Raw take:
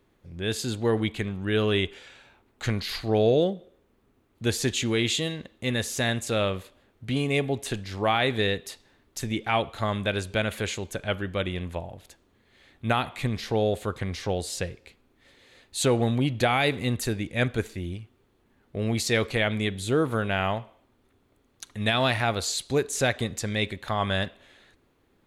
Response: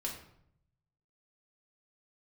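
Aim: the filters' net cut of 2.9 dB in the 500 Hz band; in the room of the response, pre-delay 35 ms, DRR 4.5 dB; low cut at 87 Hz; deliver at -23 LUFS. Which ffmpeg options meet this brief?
-filter_complex "[0:a]highpass=87,equalizer=f=500:t=o:g=-3.5,asplit=2[a][b];[1:a]atrim=start_sample=2205,adelay=35[c];[b][c]afir=irnorm=-1:irlink=0,volume=-5.5dB[d];[a][d]amix=inputs=2:normalize=0,volume=3.5dB"

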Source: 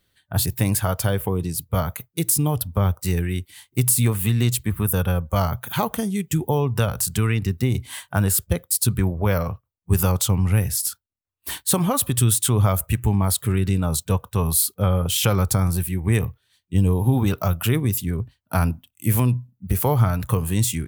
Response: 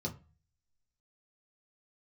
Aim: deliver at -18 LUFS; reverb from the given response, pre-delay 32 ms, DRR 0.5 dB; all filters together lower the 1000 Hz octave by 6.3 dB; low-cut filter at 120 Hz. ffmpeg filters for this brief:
-filter_complex "[0:a]highpass=120,equalizer=f=1k:t=o:g=-8.5,asplit=2[a][b];[1:a]atrim=start_sample=2205,adelay=32[c];[b][c]afir=irnorm=-1:irlink=0,volume=-1.5dB[d];[a][d]amix=inputs=2:normalize=0,volume=-2dB"

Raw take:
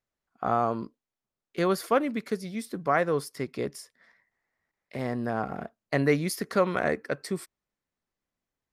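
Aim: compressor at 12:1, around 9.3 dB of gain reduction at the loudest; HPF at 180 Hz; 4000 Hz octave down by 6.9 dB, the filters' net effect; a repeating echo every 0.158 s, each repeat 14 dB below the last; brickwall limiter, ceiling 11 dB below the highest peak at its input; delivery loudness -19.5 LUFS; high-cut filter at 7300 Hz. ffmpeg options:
-af "highpass=180,lowpass=7.3k,equalizer=f=4k:t=o:g=-8.5,acompressor=threshold=-27dB:ratio=12,alimiter=level_in=2.5dB:limit=-24dB:level=0:latency=1,volume=-2.5dB,aecho=1:1:158|316:0.2|0.0399,volume=19dB"

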